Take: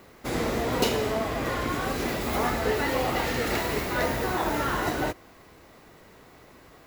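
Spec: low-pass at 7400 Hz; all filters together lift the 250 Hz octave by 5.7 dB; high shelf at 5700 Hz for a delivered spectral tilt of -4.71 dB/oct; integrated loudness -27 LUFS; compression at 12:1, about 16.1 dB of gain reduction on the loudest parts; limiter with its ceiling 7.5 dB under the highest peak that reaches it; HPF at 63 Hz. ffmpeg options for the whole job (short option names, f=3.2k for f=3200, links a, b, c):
-af "highpass=63,lowpass=7.4k,equalizer=f=250:t=o:g=7,highshelf=f=5.7k:g=-8.5,acompressor=threshold=-33dB:ratio=12,volume=12.5dB,alimiter=limit=-18dB:level=0:latency=1"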